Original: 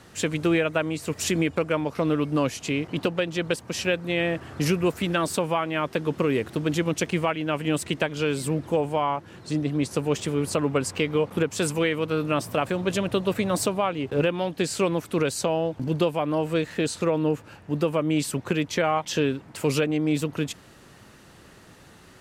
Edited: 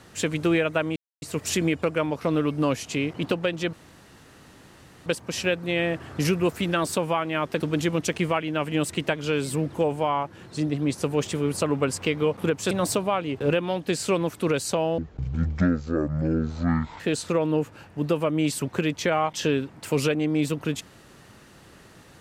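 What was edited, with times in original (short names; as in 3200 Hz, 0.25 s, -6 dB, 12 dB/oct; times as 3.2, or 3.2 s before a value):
0.96 insert silence 0.26 s
3.47 insert room tone 1.33 s
6.01–6.53 cut
11.64–13.42 cut
15.69–16.72 speed 51%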